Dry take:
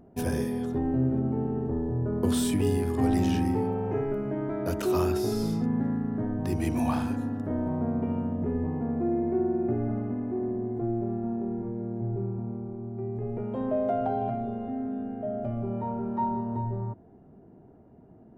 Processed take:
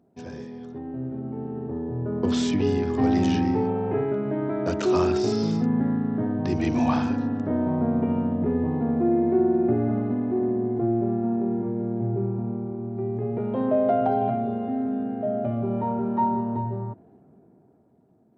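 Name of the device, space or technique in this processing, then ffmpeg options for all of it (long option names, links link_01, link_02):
Bluetooth headset: -af "highpass=110,dynaudnorm=framelen=400:gausssize=9:maxgain=16dB,aresample=16000,aresample=44100,volume=-8.5dB" -ar 32000 -c:a sbc -b:a 64k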